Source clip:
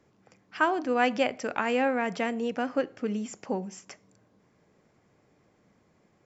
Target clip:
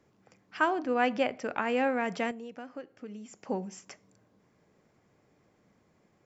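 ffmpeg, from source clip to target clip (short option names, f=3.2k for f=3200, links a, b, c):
-filter_complex "[0:a]asettb=1/sr,asplit=3[a][b][c];[a]atrim=end=0.734[d];[b]atrim=start=0.73:end=1.77,asetpts=PTS-STARTPTS,afade=t=in:d=0.004:c=qsin,afade=t=out:st=1.036:d=0.004:c=qsin,highshelf=f=5.7k:g=-10.5[e];[c]atrim=start=1.766[f];[d][e]acrossfade=d=0.004:c1=hsin:c2=qsin[g];[g][f]acrossfade=d=0.004:c1=qsin:c2=hsin,asettb=1/sr,asplit=3[h][i][j];[h]atrim=end=2.314[k];[i]atrim=start=2.31:end=3.46,asetpts=PTS-STARTPTS,afade=t=in:d=0.004:c=qsin,afade=t=out:st=1.146:d=0.004:c=qsin,acompressor=threshold=-47dB:ratio=2[l];[j]atrim=start=3.456[m];[k][l]acrossfade=d=0.004:c1=hsin:c2=qsin[n];[n][m]acrossfade=d=0.004:c1=qsin:c2=hsin,volume=-2dB"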